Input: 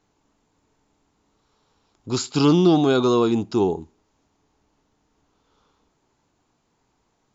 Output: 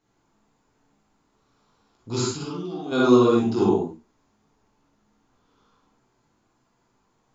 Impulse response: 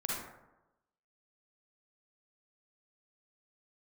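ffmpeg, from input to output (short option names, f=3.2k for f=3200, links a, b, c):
-filter_complex "[0:a]asplit=3[a][b][c];[a]afade=t=out:st=2.27:d=0.02[d];[b]acompressor=threshold=-29dB:ratio=16,afade=t=in:st=2.27:d=0.02,afade=t=out:st=2.91:d=0.02[e];[c]afade=t=in:st=2.91:d=0.02[f];[d][e][f]amix=inputs=3:normalize=0,flanger=delay=16:depth=3.8:speed=1.5[g];[1:a]atrim=start_sample=2205,afade=t=out:st=0.2:d=0.01,atrim=end_sample=9261[h];[g][h]afir=irnorm=-1:irlink=0"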